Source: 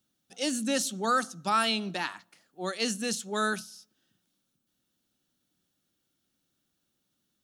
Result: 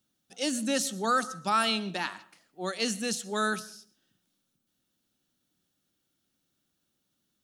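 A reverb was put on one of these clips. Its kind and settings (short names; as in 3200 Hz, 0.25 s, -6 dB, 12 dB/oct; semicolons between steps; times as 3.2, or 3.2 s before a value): digital reverb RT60 0.49 s, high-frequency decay 0.45×, pre-delay 80 ms, DRR 19 dB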